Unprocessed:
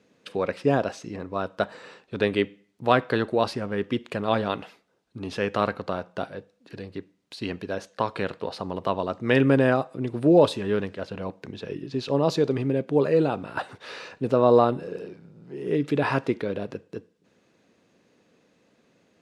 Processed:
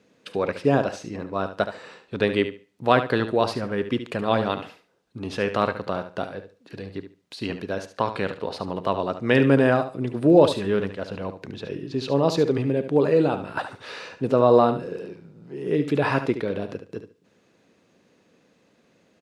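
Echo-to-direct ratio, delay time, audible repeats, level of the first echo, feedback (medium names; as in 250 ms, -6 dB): -10.5 dB, 72 ms, 2, -10.5 dB, 19%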